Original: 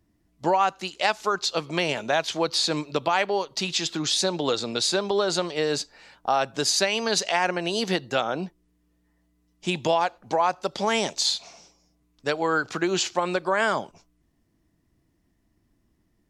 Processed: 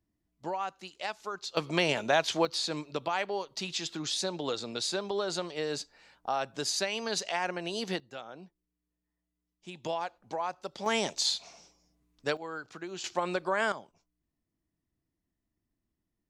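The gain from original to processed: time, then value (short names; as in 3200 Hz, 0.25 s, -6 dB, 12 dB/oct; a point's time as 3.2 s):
-13 dB
from 1.57 s -2 dB
from 2.45 s -8.5 dB
from 8 s -18.5 dB
from 9.84 s -11.5 dB
from 10.86 s -5 dB
from 12.37 s -16 dB
from 13.04 s -6 dB
from 13.72 s -16 dB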